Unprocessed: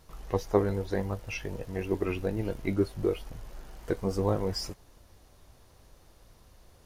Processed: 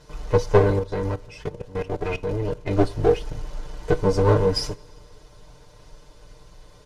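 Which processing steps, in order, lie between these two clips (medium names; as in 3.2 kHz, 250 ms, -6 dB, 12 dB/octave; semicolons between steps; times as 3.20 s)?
comb filter that takes the minimum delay 2 ms; low-pass 6.7 kHz 12 dB/octave; peaking EQ 2 kHz -3.5 dB 1.8 oct; comb 6.7 ms, depth 81%; 0.79–2.71 s: level held to a coarse grid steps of 17 dB; reverberation, pre-delay 3 ms, DRR 17.5 dB; trim +9 dB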